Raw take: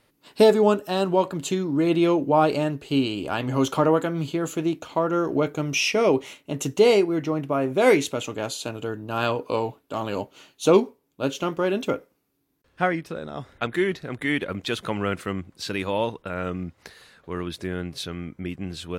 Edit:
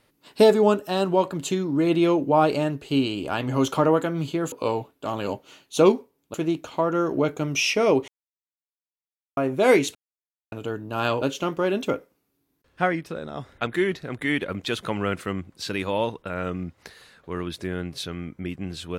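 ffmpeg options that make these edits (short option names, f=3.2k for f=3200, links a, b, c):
-filter_complex "[0:a]asplit=8[a][b][c][d][e][f][g][h];[a]atrim=end=4.522[i];[b]atrim=start=9.398:end=11.222[j];[c]atrim=start=4.518:end=6.26,asetpts=PTS-STARTPTS,afade=t=out:st=1.738:d=0.004:c=hsin[k];[d]atrim=start=6.26:end=7.55,asetpts=PTS-STARTPTS,volume=0[l];[e]atrim=start=7.55:end=8.13,asetpts=PTS-STARTPTS,afade=t=in:d=0.004:c=hsin,afade=t=out:st=0.576:d=0.004:c=hsin[m];[f]atrim=start=8.13:end=8.7,asetpts=PTS-STARTPTS,volume=0[n];[g]atrim=start=8.7:end=9.402,asetpts=PTS-STARTPTS,afade=t=in:d=0.004:c=hsin[o];[h]atrim=start=11.218[p];[i][j]acrossfade=d=0.004:c1=hsin:c2=hsin[q];[k][l][m][n][o]concat=n=5:v=0:a=1[r];[q][r]acrossfade=d=0.004:c1=hsin:c2=hsin[s];[s][p]acrossfade=d=0.004:c1=hsin:c2=hsin"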